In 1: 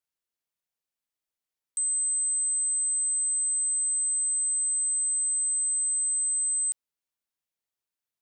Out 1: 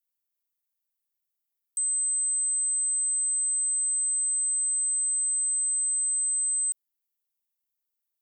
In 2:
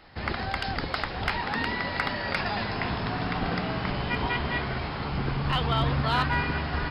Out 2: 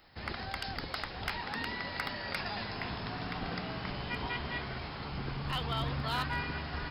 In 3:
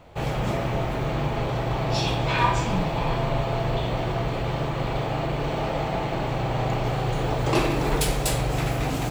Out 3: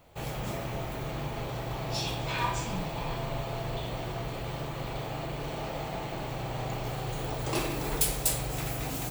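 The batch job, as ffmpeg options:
ffmpeg -i in.wav -af "aemphasis=mode=production:type=50fm,volume=-9dB" out.wav

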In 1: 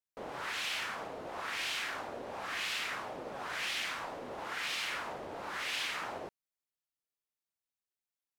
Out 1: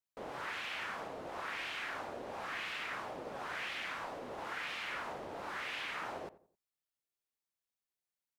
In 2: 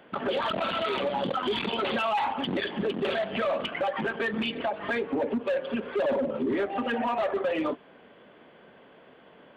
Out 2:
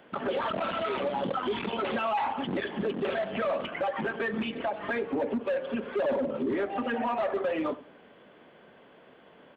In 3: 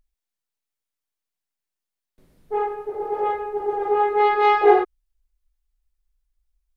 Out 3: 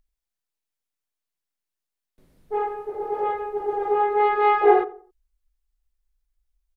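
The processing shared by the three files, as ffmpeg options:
ffmpeg -i in.wav -filter_complex "[0:a]acrossover=split=2800[link_01][link_02];[link_02]acompressor=threshold=-52dB:ratio=4:attack=1:release=60[link_03];[link_01][link_03]amix=inputs=2:normalize=0,asplit=2[link_04][link_05];[link_05]adelay=88,lowpass=frequency=1100:poles=1,volume=-15.5dB,asplit=2[link_06][link_07];[link_07]adelay=88,lowpass=frequency=1100:poles=1,volume=0.38,asplit=2[link_08][link_09];[link_09]adelay=88,lowpass=frequency=1100:poles=1,volume=0.38[link_10];[link_04][link_06][link_08][link_10]amix=inputs=4:normalize=0,volume=-1.5dB" out.wav

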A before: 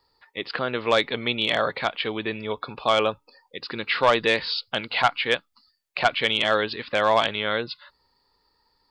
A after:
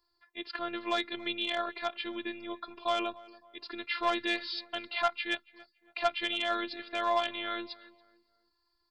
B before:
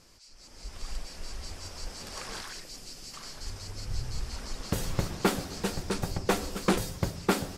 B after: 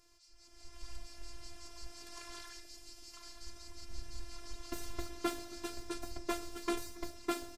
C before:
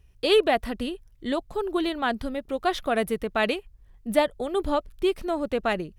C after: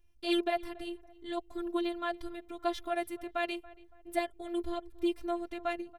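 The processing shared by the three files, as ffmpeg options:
ffmpeg -i in.wav -filter_complex "[0:a]afftfilt=real='hypot(re,im)*cos(PI*b)':imag='0':win_size=512:overlap=0.75,asplit=2[link_01][link_02];[link_02]adelay=281,lowpass=frequency=1700:poles=1,volume=-19.5dB,asplit=2[link_03][link_04];[link_04]adelay=281,lowpass=frequency=1700:poles=1,volume=0.39,asplit=2[link_05][link_06];[link_06]adelay=281,lowpass=frequency=1700:poles=1,volume=0.39[link_07];[link_01][link_03][link_05][link_07]amix=inputs=4:normalize=0,volume=-6dB" out.wav

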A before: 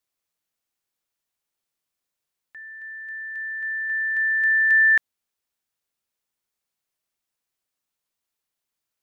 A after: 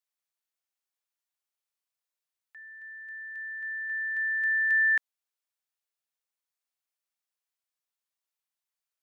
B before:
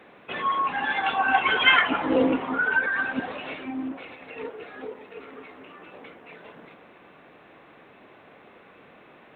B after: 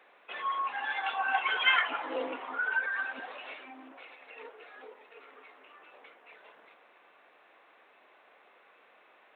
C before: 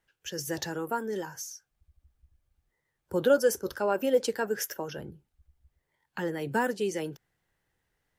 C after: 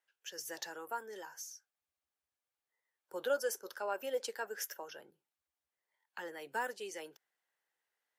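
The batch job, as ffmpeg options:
ffmpeg -i in.wav -af "highpass=610,volume=-7dB" out.wav

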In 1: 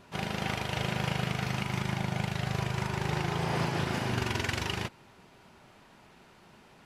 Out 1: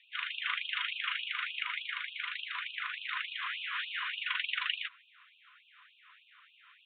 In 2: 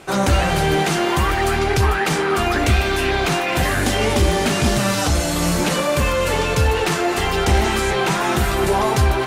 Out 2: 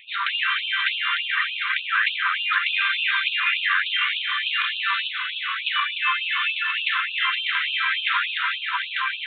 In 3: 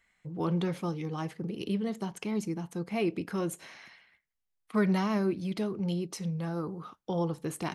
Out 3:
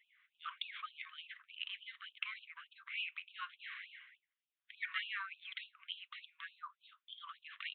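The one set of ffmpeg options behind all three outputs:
ffmpeg -i in.wav -af "aresample=8000,aresample=44100,afftfilt=real='re*gte(b*sr/1024,960*pow(2500/960,0.5+0.5*sin(2*PI*3.4*pts/sr)))':imag='im*gte(b*sr/1024,960*pow(2500/960,0.5+0.5*sin(2*PI*3.4*pts/sr)))':win_size=1024:overlap=0.75,volume=3.5dB" out.wav

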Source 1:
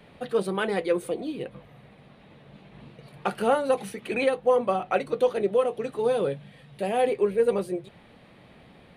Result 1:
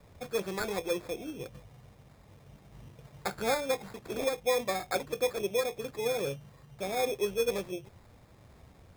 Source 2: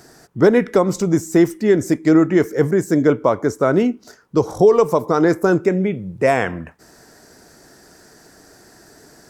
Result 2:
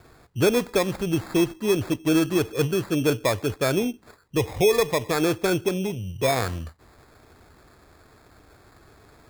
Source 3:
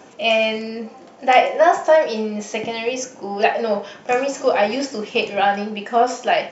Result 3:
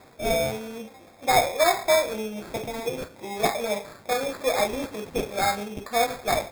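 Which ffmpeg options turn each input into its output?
ffmpeg -i in.wav -af "lowshelf=frequency=130:width_type=q:width=1.5:gain=10,acrusher=samples=15:mix=1:aa=0.000001,volume=-6.5dB" out.wav

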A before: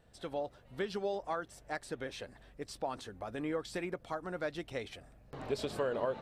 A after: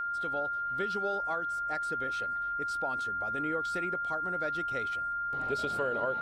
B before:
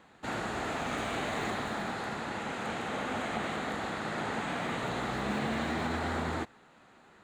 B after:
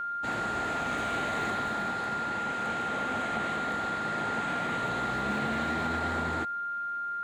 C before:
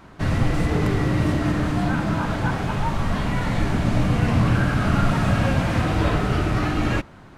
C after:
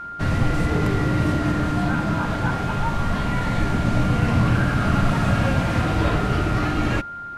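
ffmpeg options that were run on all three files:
ffmpeg -i in.wav -af "aeval=exprs='val(0)+0.0282*sin(2*PI*1400*n/s)':channel_layout=same" out.wav

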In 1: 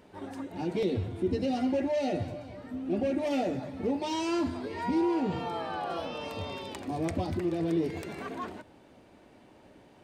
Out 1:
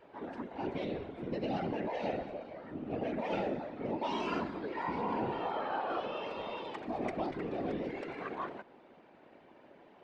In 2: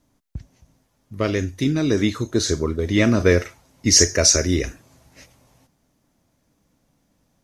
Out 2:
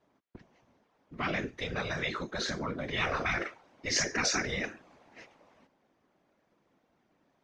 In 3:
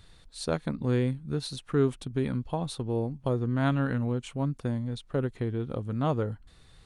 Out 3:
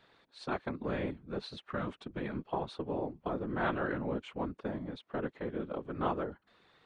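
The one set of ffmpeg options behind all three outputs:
ffmpeg -i in.wav -af "highpass=310,lowpass=2600,afftfilt=real='hypot(re,im)*cos(2*PI*random(0))':imag='hypot(re,im)*sin(2*PI*random(1))':win_size=512:overlap=0.75,afftfilt=real='re*lt(hypot(re,im),0.1)':imag='im*lt(hypot(re,im),0.1)':win_size=1024:overlap=0.75,volume=6dB" out.wav

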